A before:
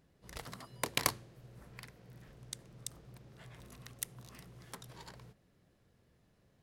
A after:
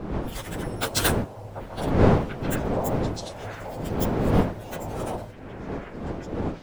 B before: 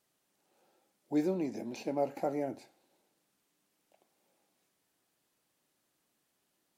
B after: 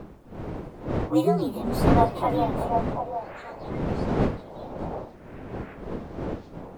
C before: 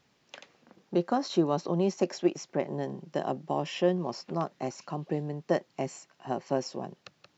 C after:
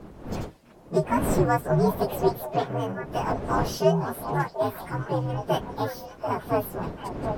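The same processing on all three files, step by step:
frequency axis rescaled in octaves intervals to 125%; wind noise 400 Hz -42 dBFS; dynamic bell 320 Hz, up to -4 dB, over -44 dBFS, Q 2.3; on a send: repeats whose band climbs or falls 738 ms, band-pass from 720 Hz, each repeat 1.4 oct, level -4.5 dB; on the sum: normalise loudness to -27 LUFS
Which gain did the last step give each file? +15.5 dB, +13.0 dB, +7.5 dB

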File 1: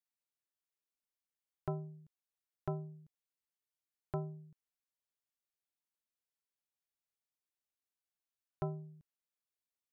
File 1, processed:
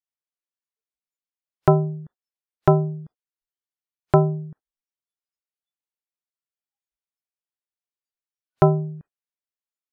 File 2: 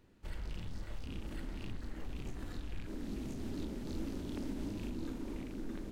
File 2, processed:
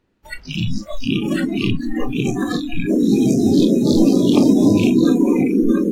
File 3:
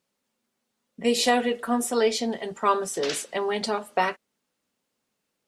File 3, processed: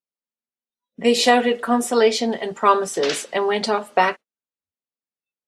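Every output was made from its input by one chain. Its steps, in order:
treble shelf 8.1 kHz -9.5 dB; spectral noise reduction 29 dB; bass shelf 150 Hz -6.5 dB; peak normalisation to -2 dBFS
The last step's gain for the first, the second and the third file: +24.5 dB, +30.5 dB, +7.0 dB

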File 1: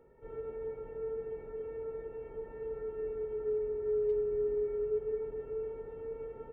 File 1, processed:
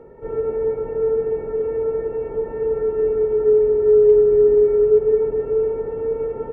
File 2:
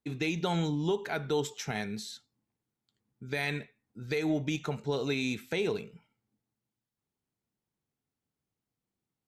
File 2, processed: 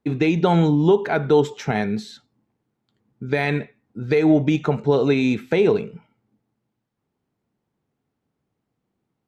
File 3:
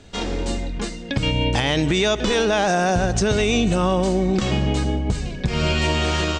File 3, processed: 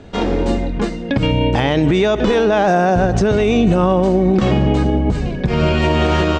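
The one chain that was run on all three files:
low-pass 1 kHz 6 dB/octave; bass shelf 110 Hz -7 dB; peak limiter -17 dBFS; peak normalisation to -6 dBFS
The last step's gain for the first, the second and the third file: +19.5 dB, +15.5 dB, +11.0 dB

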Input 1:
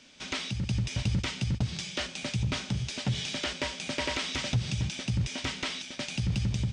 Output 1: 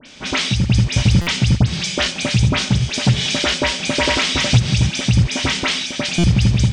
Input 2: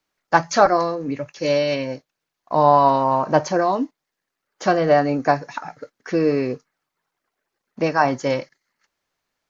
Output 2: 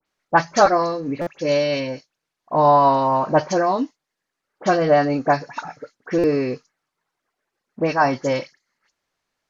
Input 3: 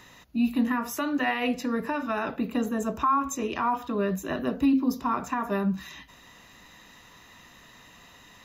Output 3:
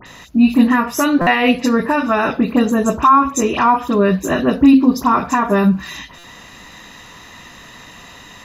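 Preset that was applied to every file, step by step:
low-pass 12 kHz 12 dB/octave; phase dispersion highs, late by 64 ms, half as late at 2.7 kHz; buffer glitch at 1.21/6.18 s, samples 256, times 9; peak normalisation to -1.5 dBFS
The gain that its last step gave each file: +14.5 dB, 0.0 dB, +13.0 dB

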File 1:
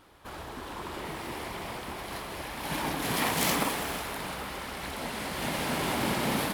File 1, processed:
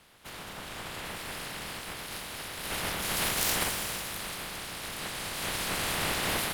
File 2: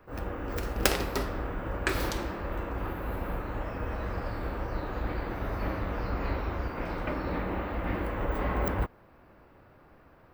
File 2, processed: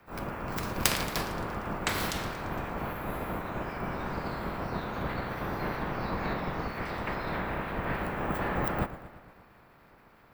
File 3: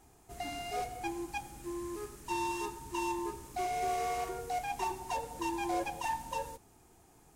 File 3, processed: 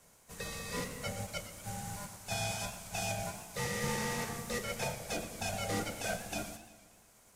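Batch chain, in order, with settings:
spectral peaks clipped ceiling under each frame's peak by 17 dB; frequency shift -240 Hz; modulated delay 115 ms, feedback 60%, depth 147 cents, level -14 dB; trim -1.5 dB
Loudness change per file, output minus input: 0.0 LU, 0.0 LU, -0.5 LU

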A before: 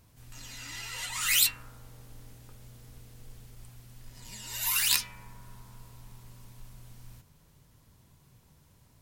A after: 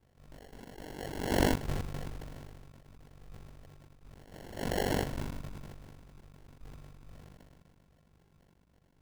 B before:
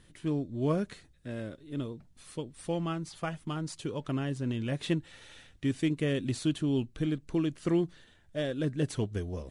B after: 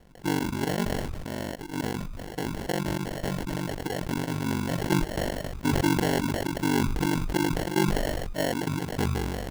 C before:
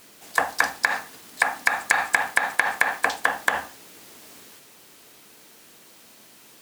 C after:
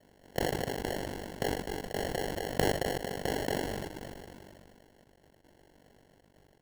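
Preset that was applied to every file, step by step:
ring modulator 24 Hz; peaking EQ 110 Hz -6.5 dB 0.41 oct; trance gate "xxx.x.xxx" 116 bpm -24 dB; sample-and-hold 36×; decay stretcher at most 22 dB/s; peak normalisation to -12 dBFS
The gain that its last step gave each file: -3.0 dB, +6.0 dB, -9.5 dB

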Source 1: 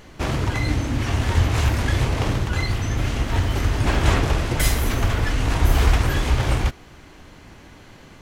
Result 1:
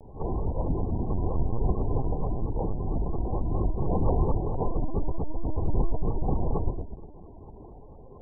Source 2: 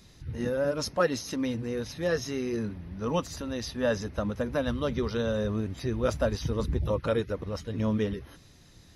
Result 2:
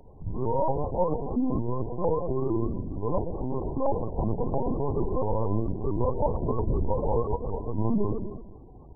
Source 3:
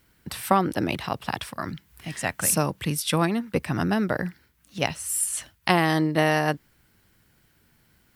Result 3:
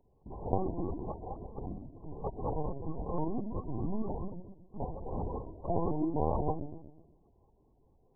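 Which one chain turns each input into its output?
spectrogram pixelated in time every 50 ms; in parallel at -0.5 dB: compression 6:1, threshold -33 dBFS; on the sum: sample-and-hold 30×; brick-wall FIR low-pass 1.1 kHz; on a send: feedback echo behind a low-pass 124 ms, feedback 47%, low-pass 560 Hz, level -6 dB; on the sum: LPC vocoder at 8 kHz pitch kept; vibrato with a chosen wave saw up 4.4 Hz, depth 160 cents; peak normalisation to -12 dBFS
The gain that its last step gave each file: -6.0 dB, +1.0 dB, -10.0 dB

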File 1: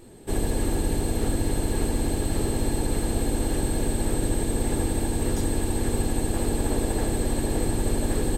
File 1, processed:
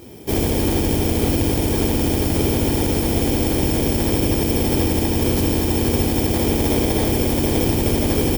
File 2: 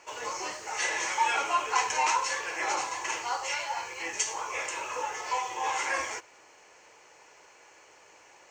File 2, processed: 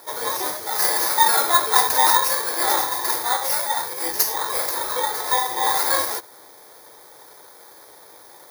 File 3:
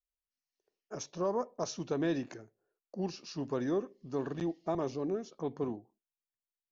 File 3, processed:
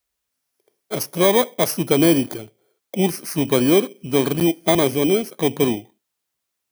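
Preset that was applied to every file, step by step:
bit-reversed sample order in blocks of 16 samples; high-pass 59 Hz; normalise loudness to -19 LUFS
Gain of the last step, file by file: +8.5 dB, +10.0 dB, +16.5 dB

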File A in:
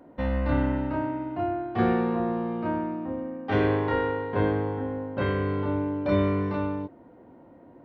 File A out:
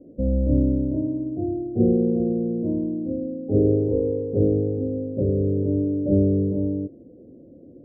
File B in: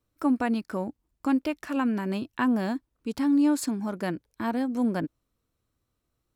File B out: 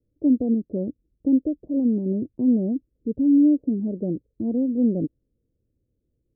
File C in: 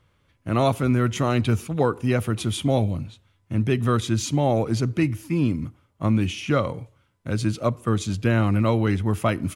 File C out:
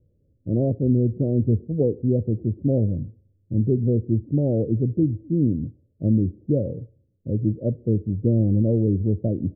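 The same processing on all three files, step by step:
steep low-pass 540 Hz 48 dB/octave; normalise loudness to -23 LUFS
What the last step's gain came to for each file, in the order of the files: +5.5 dB, +5.5 dB, +1.5 dB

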